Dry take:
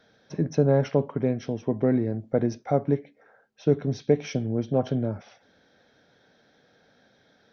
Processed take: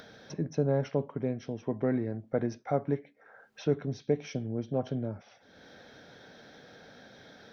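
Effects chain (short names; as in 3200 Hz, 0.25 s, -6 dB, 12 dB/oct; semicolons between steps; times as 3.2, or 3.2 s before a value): 1.58–3.85 bell 1500 Hz +5.5 dB 1.9 oct; upward compressor, threshold -31 dBFS; gain -7 dB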